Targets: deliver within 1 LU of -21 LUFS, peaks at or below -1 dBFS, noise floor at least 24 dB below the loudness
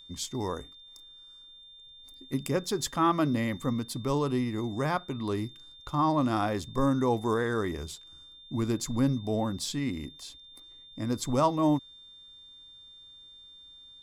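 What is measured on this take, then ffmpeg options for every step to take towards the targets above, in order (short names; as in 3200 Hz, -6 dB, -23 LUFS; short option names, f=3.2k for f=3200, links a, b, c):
steady tone 3600 Hz; tone level -49 dBFS; loudness -29.5 LUFS; peak -12.0 dBFS; loudness target -21.0 LUFS
-> -af "bandreject=f=3.6k:w=30"
-af "volume=8.5dB"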